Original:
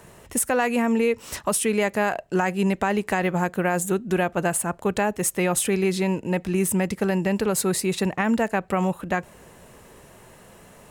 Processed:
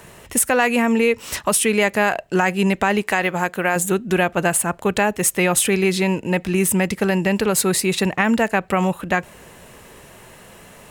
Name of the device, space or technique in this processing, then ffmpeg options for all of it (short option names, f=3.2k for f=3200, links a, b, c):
presence and air boost: -filter_complex "[0:a]equalizer=f=2.7k:t=o:w=1.8:g=5,highshelf=f=11k:g=4.5,asettb=1/sr,asplit=3[a][b][c];[a]atrim=end=3.024[d];[b]atrim=start=3.02:end=3.76,asetpts=PTS-STARTPTS,afade=t=in:d=0.004:c=qsin,afade=t=out:st=0.736:d=0.004:c=qsin,lowshelf=f=270:g=-8.5[e];[c]atrim=start=3.756[f];[d][e]acrossfade=d=0.004:c1=hsin:c2=qsin[g];[g][f]acrossfade=d=0.004:c1=qsin:c2=hsin,volume=3.5dB"